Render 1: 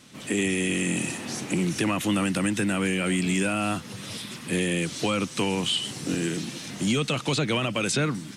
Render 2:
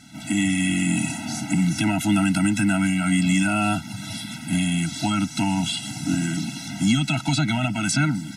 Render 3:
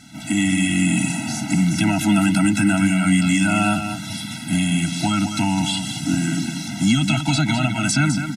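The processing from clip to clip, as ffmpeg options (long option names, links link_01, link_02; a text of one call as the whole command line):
ffmpeg -i in.wav -af "acontrast=53,afftfilt=real='re*eq(mod(floor(b*sr/1024/320),2),0)':imag='im*eq(mod(floor(b*sr/1024/320),2),0)':win_size=1024:overlap=0.75" out.wav
ffmpeg -i in.wav -af "aecho=1:1:206:0.398,volume=2.5dB" out.wav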